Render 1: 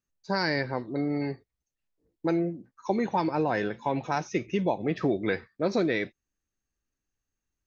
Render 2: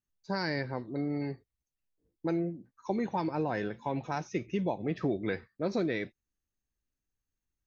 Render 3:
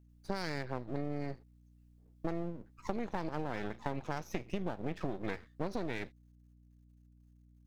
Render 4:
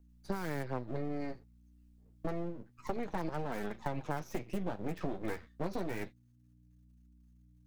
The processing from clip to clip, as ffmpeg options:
ffmpeg -i in.wav -af "lowshelf=frequency=240:gain=5.5,volume=-6.5dB" out.wav
ffmpeg -i in.wav -af "aeval=exprs='max(val(0),0)':channel_layout=same,acompressor=threshold=-37dB:ratio=6,aeval=exprs='val(0)+0.000501*(sin(2*PI*60*n/s)+sin(2*PI*2*60*n/s)/2+sin(2*PI*3*60*n/s)/3+sin(2*PI*4*60*n/s)/4+sin(2*PI*5*60*n/s)/5)':channel_layout=same,volume=5.5dB" out.wav
ffmpeg -i in.wav -filter_complex "[0:a]acrossover=split=280|2200[link_01][link_02][link_03];[link_03]aeval=exprs='(mod(200*val(0)+1,2)-1)/200':channel_layout=same[link_04];[link_01][link_02][link_04]amix=inputs=3:normalize=0,flanger=delay=4.2:depth=8.7:regen=-34:speed=0.28:shape=triangular,volume=4dB" out.wav

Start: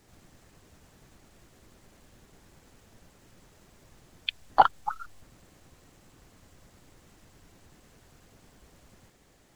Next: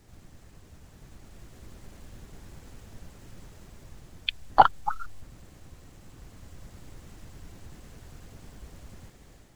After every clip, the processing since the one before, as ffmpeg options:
ffmpeg -i in.wav -af "lowshelf=frequency=150:gain=10,dynaudnorm=framelen=850:gausssize=3:maxgain=5dB" out.wav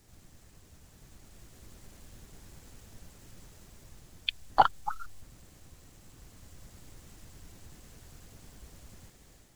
ffmpeg -i in.wav -af "highshelf=frequency=3800:gain=8.5,volume=-5.5dB" out.wav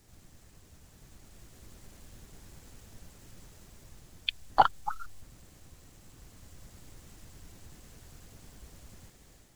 ffmpeg -i in.wav -af anull out.wav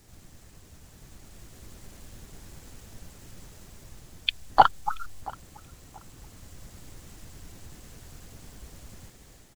ffmpeg -i in.wav -filter_complex "[0:a]asplit=2[link_01][link_02];[link_02]adelay=680,lowpass=frequency=2000:poles=1,volume=-21dB,asplit=2[link_03][link_04];[link_04]adelay=680,lowpass=frequency=2000:poles=1,volume=0.28[link_05];[link_01][link_03][link_05]amix=inputs=3:normalize=0,volume=5dB" out.wav

